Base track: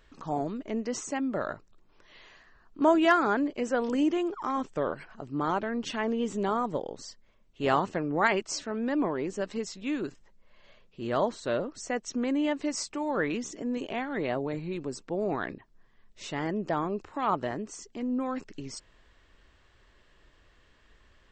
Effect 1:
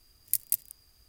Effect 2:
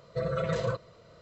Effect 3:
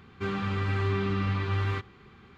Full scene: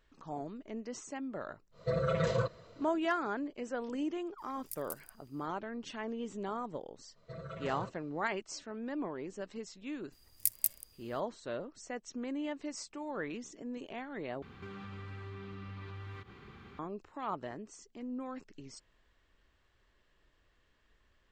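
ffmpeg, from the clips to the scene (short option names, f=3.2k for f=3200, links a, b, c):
-filter_complex "[2:a]asplit=2[a][b];[1:a]asplit=2[c][d];[0:a]volume=-10dB[e];[c]alimiter=limit=-14dB:level=0:latency=1:release=41[f];[b]bandreject=f=510:w=10[g];[3:a]acompressor=threshold=-44dB:ratio=6:attack=3.2:release=140:knee=1:detection=peak[h];[e]asplit=2[i][j];[i]atrim=end=14.424[k];[h]atrim=end=2.37[l];[j]atrim=start=16.786[m];[a]atrim=end=1.21,asetpts=PTS-STARTPTS,volume=-1dB,afade=t=in:d=0.1,afade=t=out:st=1.11:d=0.1,adelay=1710[n];[f]atrim=end=1.08,asetpts=PTS-STARTPTS,volume=-8.5dB,afade=t=in:d=0.004:c=hsin,afade=t=out:st=1.076:d=0.004:c=hsin,adelay=4380[o];[g]atrim=end=1.21,asetpts=PTS-STARTPTS,volume=-12.5dB,afade=t=in:d=0.05,afade=t=out:st=1.16:d=0.05,adelay=7130[p];[d]atrim=end=1.08,asetpts=PTS-STARTPTS,volume=-3dB,afade=t=in:d=0.004:c=hsin,afade=t=out:st=1.076:d=0.004:c=hsin,adelay=10120[q];[k][l]acrossfade=d=0.004:c1=hsin:c2=hsin[r];[r][m]acrossfade=d=0.004:c1=hsin:c2=hsin[s];[s][n][o][p][q]amix=inputs=5:normalize=0"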